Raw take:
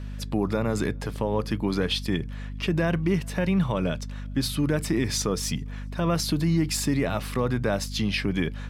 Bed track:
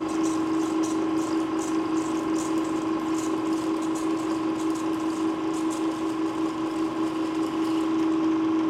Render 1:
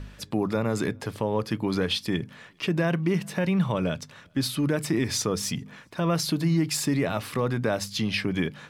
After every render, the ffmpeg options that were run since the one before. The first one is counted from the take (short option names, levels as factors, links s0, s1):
-af "bandreject=f=50:t=h:w=4,bandreject=f=100:t=h:w=4,bandreject=f=150:t=h:w=4,bandreject=f=200:t=h:w=4,bandreject=f=250:t=h:w=4"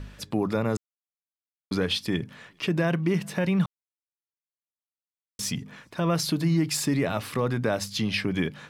-filter_complex "[0:a]asplit=5[s0][s1][s2][s3][s4];[s0]atrim=end=0.77,asetpts=PTS-STARTPTS,afade=t=out:st=0.766:d=0.004:c=hsin[s5];[s1]atrim=start=0.77:end=1.71,asetpts=PTS-STARTPTS,volume=0[s6];[s2]atrim=start=1.71:end=3.66,asetpts=PTS-STARTPTS,afade=t=in:d=0.004:c=hsin,afade=t=out:st=1.946:d=0.004:c=hsin[s7];[s3]atrim=start=3.66:end=5.39,asetpts=PTS-STARTPTS,volume=0[s8];[s4]atrim=start=5.39,asetpts=PTS-STARTPTS,afade=t=in:d=0.004:c=hsin[s9];[s5][s6][s7][s8][s9]concat=n=5:v=0:a=1"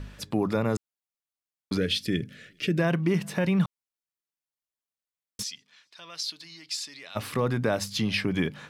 -filter_complex "[0:a]asettb=1/sr,asplit=3[s0][s1][s2];[s0]atrim=end=1.774[s3];[s1]atrim=start=1.77:end=2.79,asetpts=PTS-STARTPTS,afade=t=in:d=0.004:c=qsin,afade=t=out:st=1.016:d=0.004:c=qsin,asuperstop=centerf=930:order=4:qfactor=0.95[s4];[s2]atrim=start=2.786[s5];[s3][s4]acrossfade=d=0.004:c1=hsin:c2=qsin[s6];[s6][s5]acrossfade=d=0.004:c1=qsin:c2=hsin,asplit=3[s7][s8][s9];[s7]afade=t=out:st=5.42:d=0.02[s10];[s8]bandpass=f=4400:t=q:w=1.8,afade=t=in:st=5.42:d=0.02,afade=t=out:st=7.15:d=0.02[s11];[s9]afade=t=in:st=7.15:d=0.02[s12];[s10][s11][s12]amix=inputs=3:normalize=0"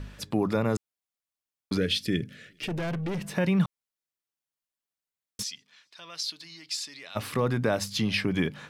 -filter_complex "[0:a]asettb=1/sr,asplit=3[s0][s1][s2];[s0]atrim=end=2.364[s3];[s1]atrim=start=2.36:end=3.37,asetpts=PTS-STARTPTS,afade=t=in:d=0.004:c=qsin,afade=t=out:st=1.006:d=0.004:c=qsin,aeval=exprs='(tanh(25.1*val(0)+0.2)-tanh(0.2))/25.1':c=same[s4];[s2]atrim=start=3.366[s5];[s3][s4]acrossfade=d=0.004:c1=hsin:c2=qsin[s6];[s6][s5]acrossfade=d=0.004:c1=qsin:c2=hsin"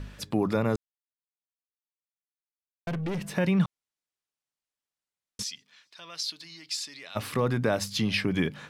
-filter_complex "[0:a]asettb=1/sr,asplit=3[s0][s1][s2];[s0]atrim=end=3.514[s3];[s1]atrim=start=3.51:end=5.43,asetpts=PTS-STARTPTS,afade=t=in:d=0.004:c=qsin,afade=t=out:st=1.916:d=0.004:c=qsin,lowpass=9500[s4];[s2]atrim=start=5.426[s5];[s3][s4]acrossfade=d=0.004:c1=hsin:c2=qsin[s6];[s6][s5]acrossfade=d=0.004:c1=qsin:c2=hsin,asplit=3[s7][s8][s9];[s7]atrim=end=0.76,asetpts=PTS-STARTPTS,afade=t=out:st=0.756:d=0.004:c=hsin[s10];[s8]atrim=start=0.76:end=2.87,asetpts=PTS-STARTPTS,volume=0[s11];[s9]atrim=start=2.87,asetpts=PTS-STARTPTS,afade=t=in:d=0.004:c=hsin[s12];[s10][s11][s12]concat=n=3:v=0:a=1"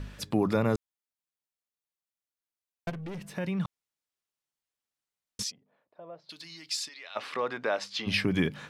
-filter_complex "[0:a]asplit=3[s0][s1][s2];[s0]afade=t=out:st=5.5:d=0.02[s3];[s1]lowpass=f=610:t=q:w=3,afade=t=in:st=5.5:d=0.02,afade=t=out:st=6.29:d=0.02[s4];[s2]afade=t=in:st=6.29:d=0.02[s5];[s3][s4][s5]amix=inputs=3:normalize=0,asplit=3[s6][s7][s8];[s6]afade=t=out:st=6.88:d=0.02[s9];[s7]highpass=530,lowpass=4200,afade=t=in:st=6.88:d=0.02,afade=t=out:st=8.06:d=0.02[s10];[s8]afade=t=in:st=8.06:d=0.02[s11];[s9][s10][s11]amix=inputs=3:normalize=0,asplit=3[s12][s13][s14];[s12]atrim=end=2.902[s15];[s13]atrim=start=2.898:end=3.652,asetpts=PTS-STARTPTS,volume=0.422[s16];[s14]atrim=start=3.648[s17];[s15][s16]acrossfade=d=0.004:c1=hsin:c2=hsin[s18];[s18][s17]acrossfade=d=0.004:c1=hsin:c2=hsin"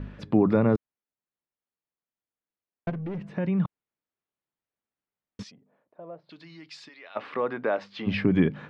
-af "lowpass=2300,equalizer=f=240:w=0.49:g=6.5"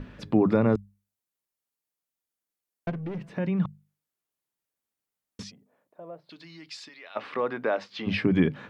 -af "aemphasis=mode=production:type=cd,bandreject=f=50:t=h:w=6,bandreject=f=100:t=h:w=6,bandreject=f=150:t=h:w=6,bandreject=f=200:t=h:w=6"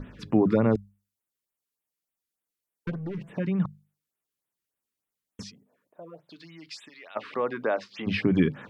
-af "afftfilt=real='re*(1-between(b*sr/1024,630*pow(5600/630,0.5+0.5*sin(2*PI*3.4*pts/sr))/1.41,630*pow(5600/630,0.5+0.5*sin(2*PI*3.4*pts/sr))*1.41))':imag='im*(1-between(b*sr/1024,630*pow(5600/630,0.5+0.5*sin(2*PI*3.4*pts/sr))/1.41,630*pow(5600/630,0.5+0.5*sin(2*PI*3.4*pts/sr))*1.41))':win_size=1024:overlap=0.75"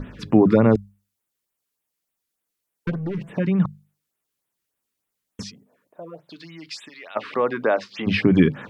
-af "volume=2.11"